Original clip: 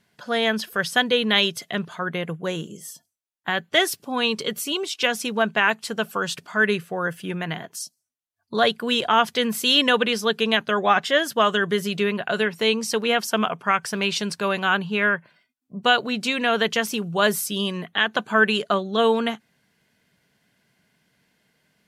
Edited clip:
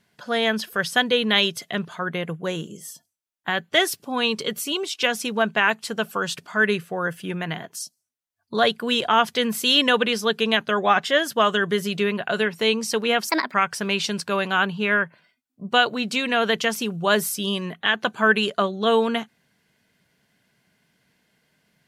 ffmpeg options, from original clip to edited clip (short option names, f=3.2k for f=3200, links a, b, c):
-filter_complex "[0:a]asplit=3[a][b][c];[a]atrim=end=13.294[d];[b]atrim=start=13.29:end=13.66,asetpts=PTS-STARTPTS,asetrate=65268,aresample=44100[e];[c]atrim=start=13.656[f];[d][e]acrossfade=d=0.004:c1=hsin:c2=hsin[g];[g][f]acrossfade=d=0.004:c1=hsin:c2=hsin"